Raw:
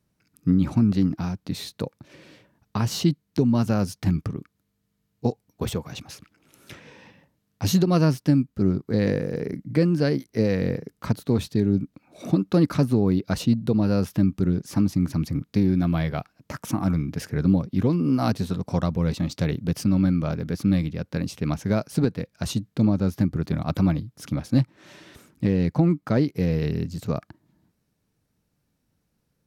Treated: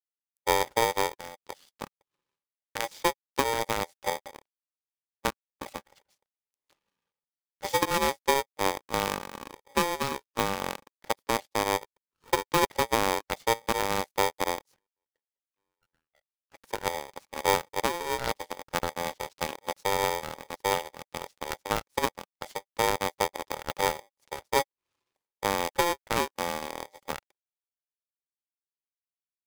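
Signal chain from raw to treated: 14.76–16.52 s: auto-wah 720–2300 Hz, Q 11, down, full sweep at -16 dBFS; power-law waveshaper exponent 2; polarity switched at an audio rate 690 Hz; trim -1.5 dB

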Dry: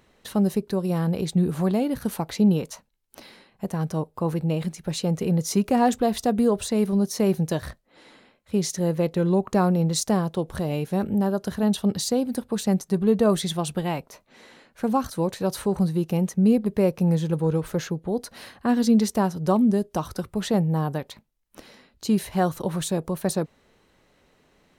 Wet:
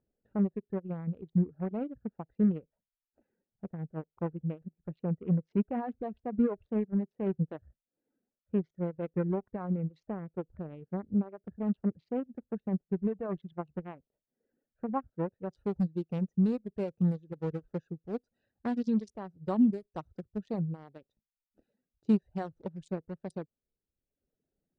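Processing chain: local Wiener filter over 41 samples; peak limiter -16 dBFS, peak gain reduction 7.5 dB; low-pass 2.3 kHz 24 dB/octave, from 15.51 s 7.1 kHz; reverb removal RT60 1.1 s; upward expansion 2.5:1, over -32 dBFS

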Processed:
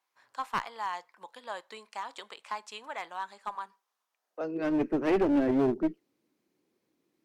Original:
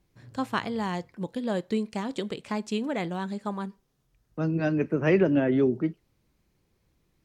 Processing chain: high-pass sweep 980 Hz -> 290 Hz, 4.07–4.77 s; one-sided clip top -22 dBFS; 3.55–4.41 s: steep high-pass 180 Hz 96 dB/octave; trim -5.5 dB

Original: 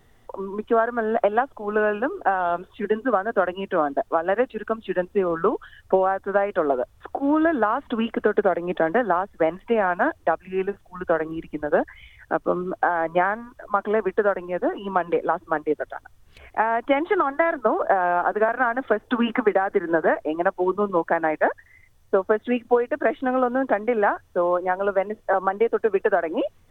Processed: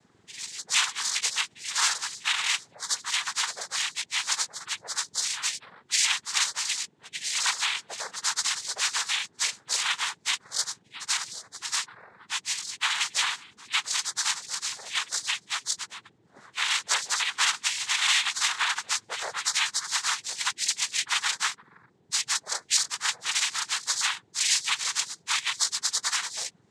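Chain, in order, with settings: spectrum inverted on a logarithmic axis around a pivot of 1.6 kHz; noise-vocoded speech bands 6

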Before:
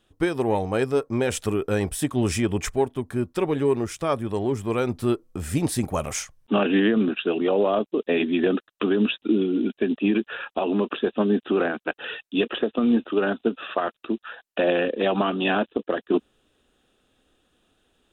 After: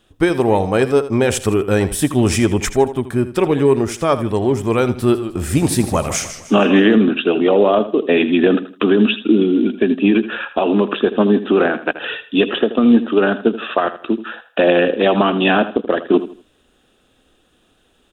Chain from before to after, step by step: feedback delay 80 ms, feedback 30%, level -13.5 dB; 4.93–6.96 s: modulated delay 153 ms, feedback 41%, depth 120 cents, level -12 dB; trim +8 dB

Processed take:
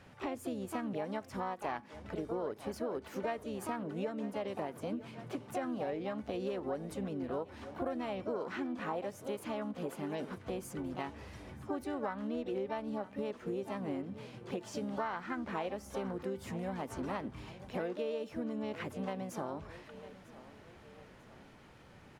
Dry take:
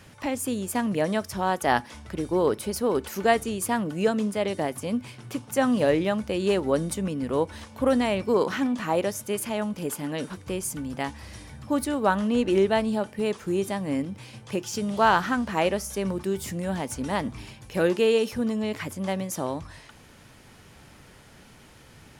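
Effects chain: low-pass 1.5 kHz 6 dB/octave; harmony voices +5 st -7 dB; bass shelf 270 Hz -5.5 dB; feedback delay 947 ms, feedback 49%, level -21.5 dB; compression 6:1, threshold -31 dBFS, peak gain reduction 15 dB; endings held to a fixed fall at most 480 dB/s; trim -3.5 dB

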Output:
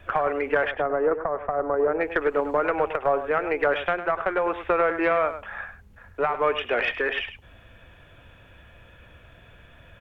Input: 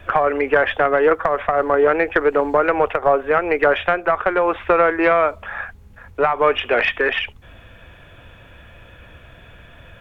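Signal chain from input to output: 0.71–2.01 s: low-pass 1.1 kHz 12 dB/octave; delay 103 ms -11.5 dB; trim -7 dB

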